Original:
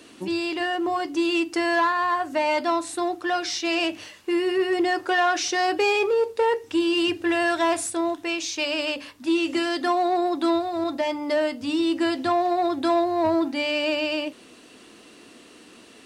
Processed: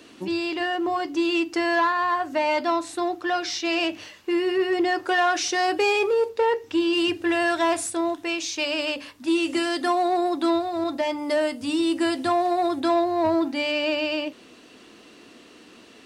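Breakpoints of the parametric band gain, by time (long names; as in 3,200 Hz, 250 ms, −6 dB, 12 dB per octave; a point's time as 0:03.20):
parametric band 9,400 Hz 0.59 octaves
−7 dB
from 0:05.05 +2 dB
from 0:06.29 −9.5 dB
from 0:06.93 −0.5 dB
from 0:09.28 +7 dB
from 0:10.35 +1 dB
from 0:11.18 +9 dB
from 0:12.80 −1 dB
from 0:13.72 −8.5 dB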